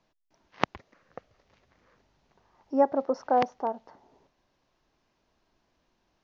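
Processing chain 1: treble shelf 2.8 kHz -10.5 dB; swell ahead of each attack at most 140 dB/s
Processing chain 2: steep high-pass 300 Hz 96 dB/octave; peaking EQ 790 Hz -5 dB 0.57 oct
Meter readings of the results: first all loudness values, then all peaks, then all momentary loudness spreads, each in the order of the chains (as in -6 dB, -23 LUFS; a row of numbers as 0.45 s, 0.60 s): -28.5 LUFS, -31.0 LUFS; -4.5 dBFS, -7.0 dBFS; 13 LU, 9 LU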